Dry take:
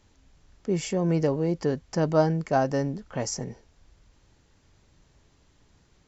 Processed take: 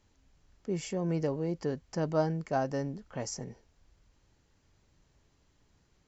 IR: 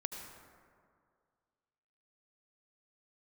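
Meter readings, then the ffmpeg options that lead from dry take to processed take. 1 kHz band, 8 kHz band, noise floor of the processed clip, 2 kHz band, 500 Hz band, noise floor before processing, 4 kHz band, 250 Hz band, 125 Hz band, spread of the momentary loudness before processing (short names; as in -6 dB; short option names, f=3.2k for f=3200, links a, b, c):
-7.0 dB, n/a, -70 dBFS, -7.0 dB, -7.0 dB, -63 dBFS, -7.0 dB, -7.0 dB, -7.0 dB, 9 LU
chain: -af "bandreject=f=3.6k:w=30,volume=-7dB"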